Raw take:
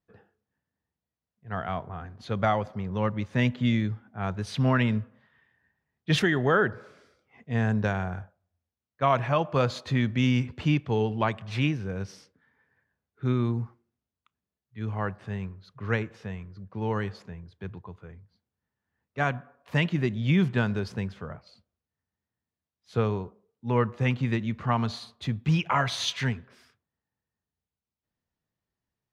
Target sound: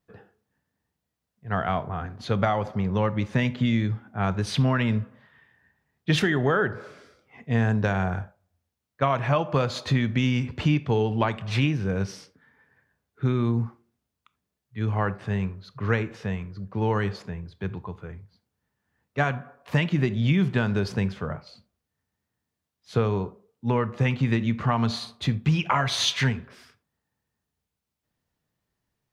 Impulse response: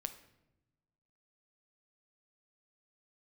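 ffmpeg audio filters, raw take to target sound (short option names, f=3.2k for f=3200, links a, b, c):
-filter_complex "[0:a]acompressor=threshold=-26dB:ratio=5,asplit=2[a][b];[1:a]atrim=start_sample=2205,atrim=end_sample=3969[c];[b][c]afir=irnorm=-1:irlink=0,volume=4dB[d];[a][d]amix=inputs=2:normalize=0"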